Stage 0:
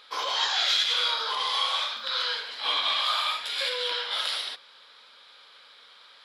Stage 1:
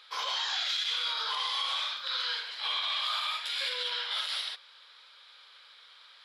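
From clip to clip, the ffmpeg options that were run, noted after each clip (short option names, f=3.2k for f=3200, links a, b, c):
-af "highpass=f=1.4k:p=1,highshelf=f=5.4k:g=-4.5,alimiter=limit=-22.5dB:level=0:latency=1:release=54"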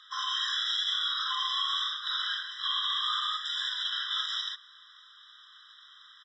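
-af "acrusher=bits=6:mode=log:mix=0:aa=0.000001,aresample=16000,aresample=44100,afftfilt=real='re*eq(mod(floor(b*sr/1024/1000),2),1)':imag='im*eq(mod(floor(b*sr/1024/1000),2),1)':win_size=1024:overlap=0.75,volume=2.5dB"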